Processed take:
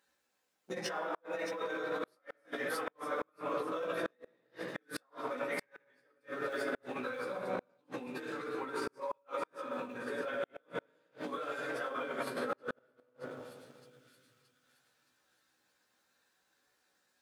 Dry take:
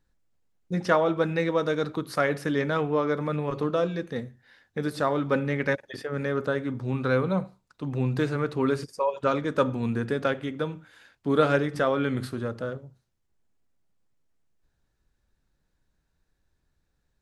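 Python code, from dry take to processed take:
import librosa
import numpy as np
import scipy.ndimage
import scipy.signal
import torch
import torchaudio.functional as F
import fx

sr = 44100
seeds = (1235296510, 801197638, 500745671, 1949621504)

p1 = fx.phase_scramble(x, sr, seeds[0], window_ms=50)
p2 = fx.room_shoebox(p1, sr, seeds[1], volume_m3=3400.0, walls='mixed', distance_m=2.1)
p3 = fx.leveller(p2, sr, passes=1)
p4 = fx.dynamic_eq(p3, sr, hz=5100.0, q=0.82, threshold_db=-44.0, ratio=4.0, max_db=-6)
p5 = fx.over_compress(p4, sr, threshold_db=-29.0, ratio=-1.0)
p6 = scipy.signal.sosfilt(scipy.signal.bessel(2, 670.0, 'highpass', norm='mag', fs=sr, output='sos'), p5)
p7 = fx.doubler(p6, sr, ms=16.0, db=-5)
p8 = p7 + fx.echo_wet_highpass(p7, sr, ms=622, feedback_pct=48, hz=4500.0, wet_db=-7.0, dry=0)
p9 = fx.gate_flip(p8, sr, shuts_db=-23.0, range_db=-39)
y = p9 * librosa.db_to_amplitude(-1.5)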